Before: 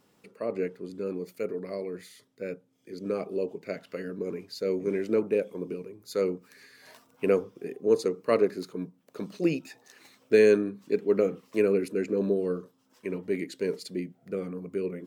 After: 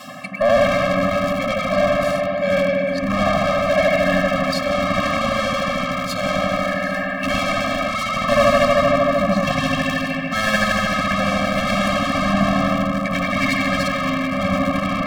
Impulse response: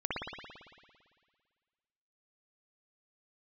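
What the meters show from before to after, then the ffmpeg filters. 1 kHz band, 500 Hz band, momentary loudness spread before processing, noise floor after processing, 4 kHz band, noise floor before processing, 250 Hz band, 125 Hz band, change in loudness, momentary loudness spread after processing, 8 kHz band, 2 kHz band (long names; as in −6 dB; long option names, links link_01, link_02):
+24.5 dB, +7.5 dB, 14 LU, −24 dBFS, +21.0 dB, −66 dBFS, +10.5 dB, +15.5 dB, +10.5 dB, 5 LU, can't be measured, +20.5 dB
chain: -filter_complex "[1:a]atrim=start_sample=2205,asetrate=32634,aresample=44100[link_01];[0:a][link_01]afir=irnorm=-1:irlink=0,asplit=2[link_02][link_03];[link_03]aeval=exprs='val(0)*gte(abs(val(0)),0.075)':channel_layout=same,volume=-10.5dB[link_04];[link_02][link_04]amix=inputs=2:normalize=0,adynamicequalizer=threshold=0.02:dfrequency=150:dqfactor=1.7:tfrequency=150:tqfactor=1.7:attack=5:release=100:ratio=0.375:range=2:mode=cutabove:tftype=bell,asplit=2[link_05][link_06];[link_06]highpass=frequency=720:poles=1,volume=37dB,asoftclip=type=tanh:threshold=-0.5dB[link_07];[link_05][link_07]amix=inputs=2:normalize=0,lowpass=frequency=3500:poles=1,volume=-6dB,areverse,acompressor=mode=upward:threshold=-11dB:ratio=2.5,areverse,afftfilt=real='re*eq(mod(floor(b*sr/1024/260),2),0)':imag='im*eq(mod(floor(b*sr/1024/260),2),0)':win_size=1024:overlap=0.75,volume=-4dB"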